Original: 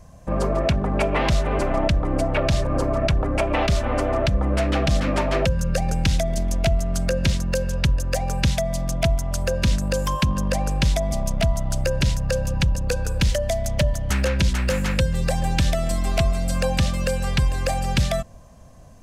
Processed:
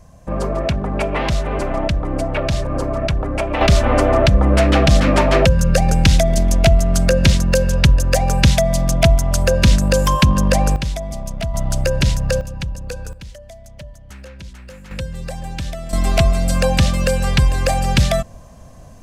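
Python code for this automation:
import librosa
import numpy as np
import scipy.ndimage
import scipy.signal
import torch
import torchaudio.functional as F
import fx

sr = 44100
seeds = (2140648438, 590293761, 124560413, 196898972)

y = fx.gain(x, sr, db=fx.steps((0.0, 1.0), (3.61, 8.0), (10.76, -3.0), (11.54, 4.5), (12.41, -5.0), (13.13, -16.0), (14.91, -6.0), (15.93, 6.0)))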